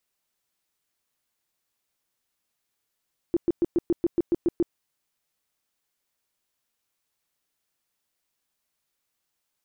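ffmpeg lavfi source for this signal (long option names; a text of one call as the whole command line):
ffmpeg -f lavfi -i "aevalsrc='0.133*sin(2*PI*342*mod(t,0.14))*lt(mod(t,0.14),9/342)':duration=1.4:sample_rate=44100" out.wav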